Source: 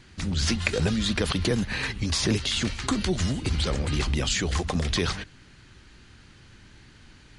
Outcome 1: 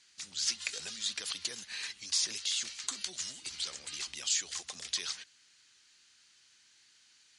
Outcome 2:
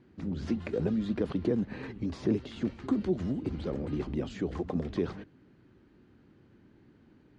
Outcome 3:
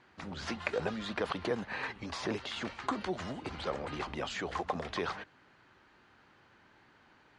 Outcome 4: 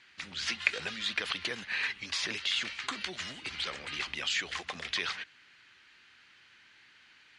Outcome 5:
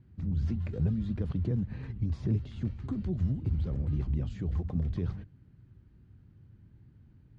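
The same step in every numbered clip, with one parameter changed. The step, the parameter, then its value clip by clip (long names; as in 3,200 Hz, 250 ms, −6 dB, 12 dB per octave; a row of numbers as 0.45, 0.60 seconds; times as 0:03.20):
resonant band-pass, frequency: 6,800, 310, 840, 2,300, 110 Hertz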